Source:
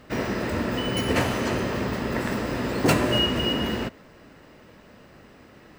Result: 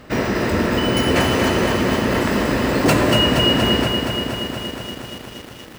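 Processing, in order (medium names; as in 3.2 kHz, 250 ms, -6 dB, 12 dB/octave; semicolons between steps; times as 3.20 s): in parallel at -0.5 dB: peak limiter -18.5 dBFS, peak gain reduction 11 dB; on the sum: bit-crushed delay 236 ms, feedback 80%, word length 7-bit, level -6 dB; trim +1.5 dB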